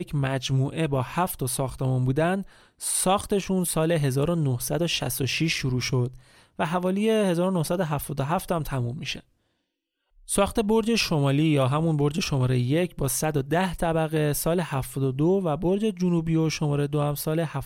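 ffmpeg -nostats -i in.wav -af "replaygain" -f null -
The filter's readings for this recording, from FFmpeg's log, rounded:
track_gain = +6.3 dB
track_peak = 0.259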